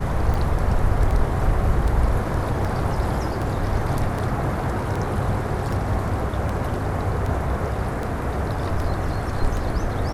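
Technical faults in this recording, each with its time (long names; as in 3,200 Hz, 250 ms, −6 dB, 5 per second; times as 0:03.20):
scratch tick 78 rpm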